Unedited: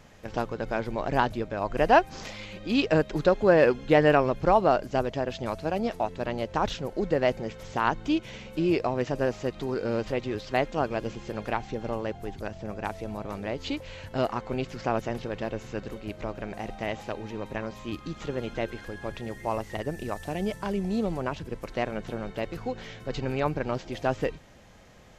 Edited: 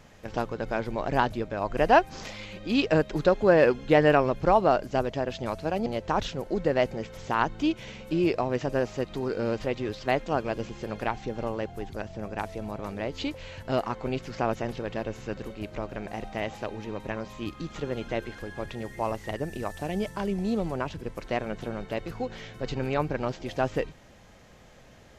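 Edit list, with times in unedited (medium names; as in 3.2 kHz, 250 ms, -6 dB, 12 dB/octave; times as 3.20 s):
5.86–6.32 s: delete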